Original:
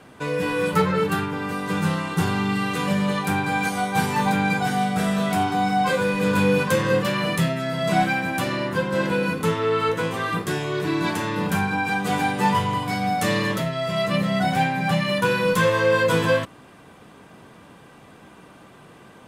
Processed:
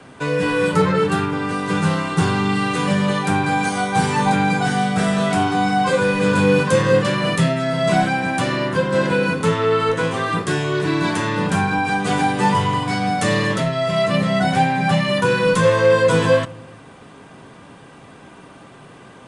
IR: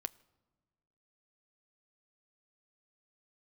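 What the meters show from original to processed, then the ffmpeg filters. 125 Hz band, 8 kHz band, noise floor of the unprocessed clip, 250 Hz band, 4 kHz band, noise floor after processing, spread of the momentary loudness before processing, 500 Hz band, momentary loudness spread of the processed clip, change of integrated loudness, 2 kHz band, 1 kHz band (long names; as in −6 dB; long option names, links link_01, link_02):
+4.5 dB, +4.0 dB, −48 dBFS, +4.0 dB, +3.5 dB, −43 dBFS, 5 LU, +5.0 dB, 5 LU, +4.0 dB, +3.0 dB, +3.5 dB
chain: -filter_complex "[0:a]acrossover=split=120|1000|5100[link_01][link_02][link_03][link_04];[link_03]alimiter=limit=-22.5dB:level=0:latency=1[link_05];[link_01][link_02][link_05][link_04]amix=inputs=4:normalize=0[link_06];[1:a]atrim=start_sample=2205[link_07];[link_06][link_07]afir=irnorm=-1:irlink=0,aresample=22050,aresample=44100,volume=6.5dB"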